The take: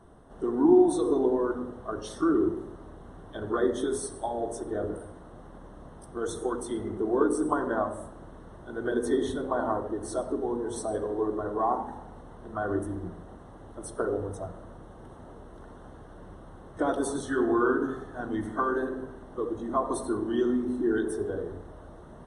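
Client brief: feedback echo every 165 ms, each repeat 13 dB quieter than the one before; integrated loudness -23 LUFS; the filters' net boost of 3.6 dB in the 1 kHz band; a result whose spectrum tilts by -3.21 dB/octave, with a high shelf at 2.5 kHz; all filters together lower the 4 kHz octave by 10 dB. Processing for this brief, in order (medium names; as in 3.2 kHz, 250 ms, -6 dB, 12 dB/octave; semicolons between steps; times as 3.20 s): peaking EQ 1 kHz +6 dB; treble shelf 2.5 kHz -6.5 dB; peaking EQ 4 kHz -7.5 dB; feedback delay 165 ms, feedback 22%, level -13 dB; trim +5 dB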